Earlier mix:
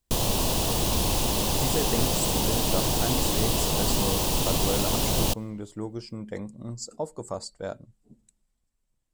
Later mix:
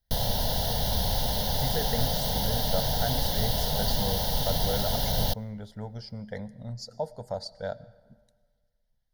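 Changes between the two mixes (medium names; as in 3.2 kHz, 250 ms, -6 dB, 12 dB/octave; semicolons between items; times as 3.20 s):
speech: send on; master: add static phaser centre 1.7 kHz, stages 8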